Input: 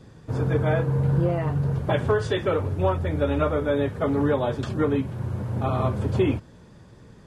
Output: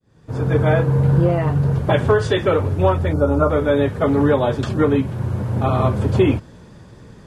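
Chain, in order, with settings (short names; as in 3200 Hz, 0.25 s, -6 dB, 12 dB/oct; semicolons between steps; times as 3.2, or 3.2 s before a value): opening faded in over 0.60 s; spectral gain 3.13–3.5, 1500–4100 Hz -18 dB; gain +6.5 dB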